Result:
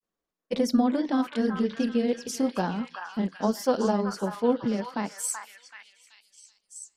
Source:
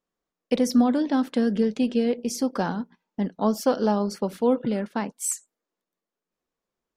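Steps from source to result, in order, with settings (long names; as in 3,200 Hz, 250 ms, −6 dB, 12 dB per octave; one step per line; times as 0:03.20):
granular cloud, spray 19 ms, pitch spread up and down by 0 semitones
echo through a band-pass that steps 380 ms, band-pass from 1,400 Hz, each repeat 0.7 octaves, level −1 dB
level −1 dB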